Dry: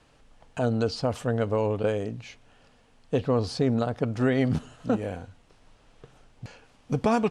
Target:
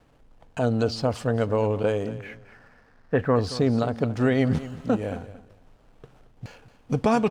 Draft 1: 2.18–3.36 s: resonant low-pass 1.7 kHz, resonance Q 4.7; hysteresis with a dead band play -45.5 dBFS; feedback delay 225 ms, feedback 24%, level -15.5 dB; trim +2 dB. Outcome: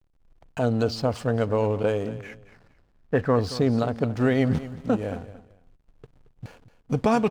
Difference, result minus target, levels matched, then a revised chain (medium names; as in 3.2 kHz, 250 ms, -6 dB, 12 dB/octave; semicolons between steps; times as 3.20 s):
hysteresis with a dead band: distortion +10 dB
2.18–3.36 s: resonant low-pass 1.7 kHz, resonance Q 4.7; hysteresis with a dead band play -56.5 dBFS; feedback delay 225 ms, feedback 24%, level -15.5 dB; trim +2 dB